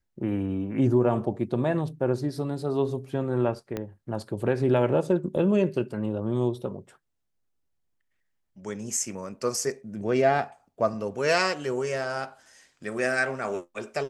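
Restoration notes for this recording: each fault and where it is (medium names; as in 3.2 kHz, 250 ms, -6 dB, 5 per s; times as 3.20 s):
3.77 s: pop -17 dBFS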